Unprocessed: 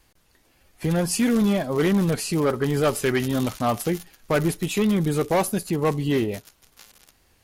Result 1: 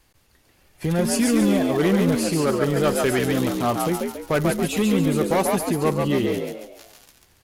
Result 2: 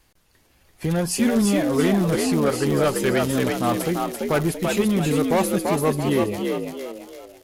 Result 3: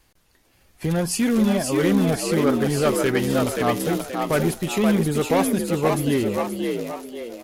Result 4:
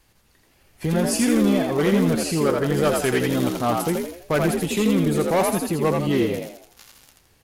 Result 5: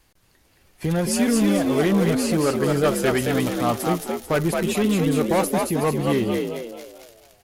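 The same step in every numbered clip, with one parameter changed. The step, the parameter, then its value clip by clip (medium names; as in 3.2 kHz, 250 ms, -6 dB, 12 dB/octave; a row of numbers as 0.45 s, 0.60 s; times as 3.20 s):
frequency-shifting echo, time: 140 ms, 338 ms, 528 ms, 83 ms, 221 ms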